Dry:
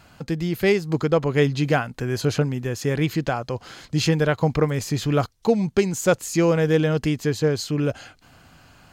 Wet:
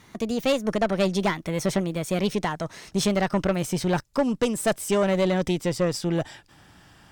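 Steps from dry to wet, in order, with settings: gliding tape speed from 139% -> 112%; valve stage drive 15 dB, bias 0.45

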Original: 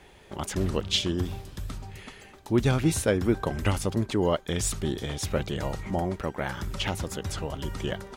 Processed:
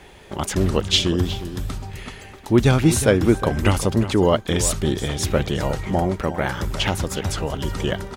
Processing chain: echo from a far wall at 62 m, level -12 dB; trim +7.5 dB

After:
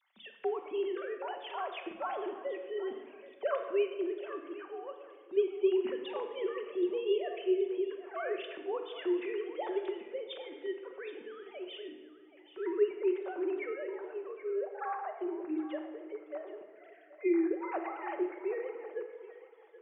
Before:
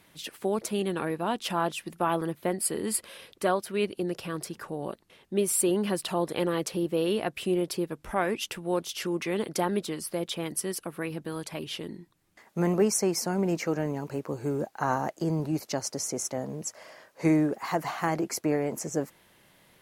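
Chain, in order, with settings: formants replaced by sine waves; thinning echo 776 ms, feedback 29%, high-pass 540 Hz, level -14 dB; simulated room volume 1300 m³, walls mixed, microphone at 1.1 m; trim -8 dB

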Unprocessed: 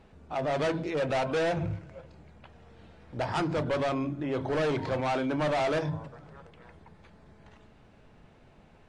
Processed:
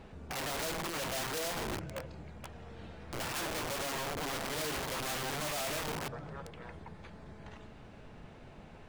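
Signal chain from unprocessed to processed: peak limiter -34 dBFS, peak gain reduction 11 dB; integer overflow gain 37.5 dB; trim +5 dB

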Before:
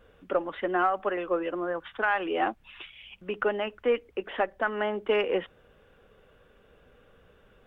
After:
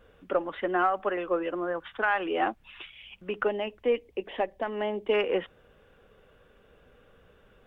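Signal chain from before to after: 3.47–5.14 s: peaking EQ 1.4 kHz -14 dB 0.57 oct

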